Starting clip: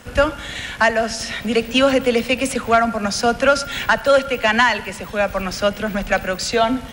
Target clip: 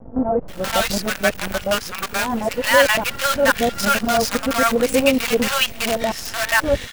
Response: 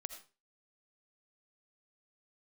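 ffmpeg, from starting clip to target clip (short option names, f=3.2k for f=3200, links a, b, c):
-filter_complex "[0:a]areverse,acrusher=bits=4:dc=4:mix=0:aa=0.000001,acrossover=split=790[a][b];[b]adelay=480[c];[a][c]amix=inputs=2:normalize=0"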